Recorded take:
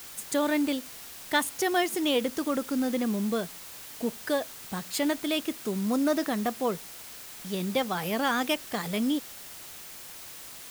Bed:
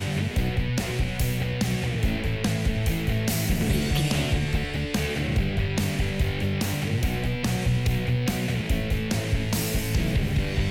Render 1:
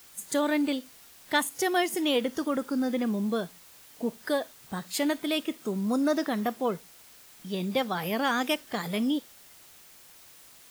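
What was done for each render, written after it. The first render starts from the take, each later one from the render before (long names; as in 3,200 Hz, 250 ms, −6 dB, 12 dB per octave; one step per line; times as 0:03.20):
noise reduction from a noise print 9 dB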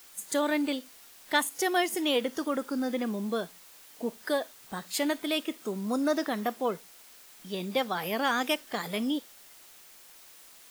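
parametric band 100 Hz −11.5 dB 1.7 octaves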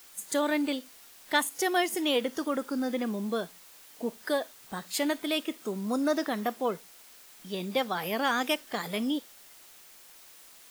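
no processing that can be heard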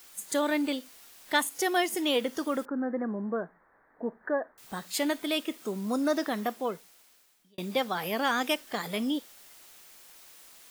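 0:02.65–0:04.58: elliptic low-pass filter 1,800 Hz
0:06.40–0:07.58: fade out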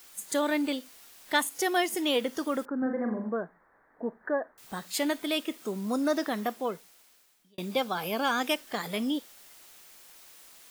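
0:02.78–0:03.29: flutter between parallel walls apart 7.2 metres, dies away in 0.53 s
0:07.73–0:08.40: Butterworth band-reject 1,900 Hz, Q 5.7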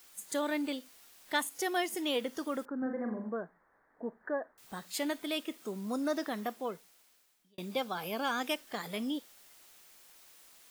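level −5.5 dB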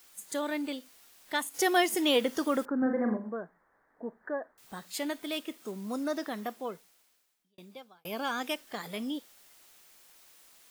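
0:01.54–0:03.17: clip gain +7 dB
0:05.18–0:06.04: one scale factor per block 5 bits
0:06.73–0:08.05: fade out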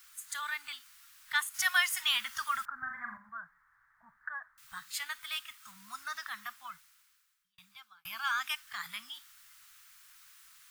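Chebyshev band-stop filter 120–1,300 Hz, order 3
parametric band 780 Hz +8 dB 2.4 octaves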